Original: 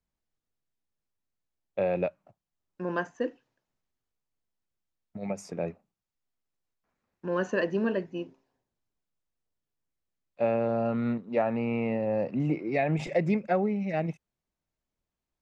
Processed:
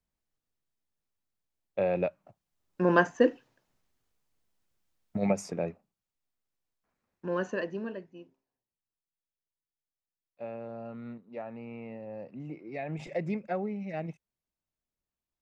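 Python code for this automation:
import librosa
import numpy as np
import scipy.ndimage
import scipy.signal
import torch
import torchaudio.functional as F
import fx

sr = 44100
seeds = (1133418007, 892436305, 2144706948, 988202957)

y = fx.gain(x, sr, db=fx.line((2.05, -0.5), (2.84, 8.0), (5.23, 8.0), (5.69, -1.5), (7.32, -1.5), (8.15, -13.5), (12.49, -13.5), (13.18, -6.5)))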